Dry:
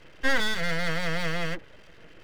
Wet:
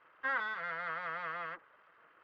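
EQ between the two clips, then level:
resonant band-pass 1,200 Hz, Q 3.6
high-frequency loss of the air 180 metres
+2.0 dB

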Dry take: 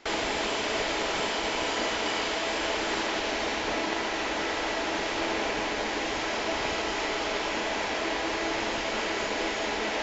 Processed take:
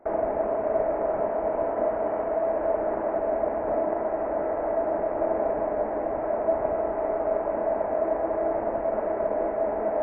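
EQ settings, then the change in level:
Gaussian smoothing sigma 7 samples
parametric band 630 Hz +14.5 dB 0.4 octaves
0.0 dB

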